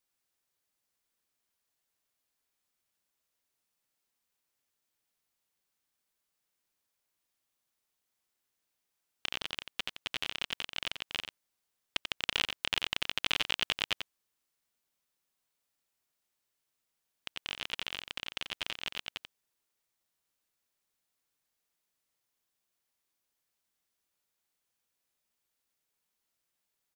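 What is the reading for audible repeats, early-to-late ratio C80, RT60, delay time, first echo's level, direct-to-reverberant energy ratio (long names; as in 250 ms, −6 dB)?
1, no reverb audible, no reverb audible, 89 ms, −7.5 dB, no reverb audible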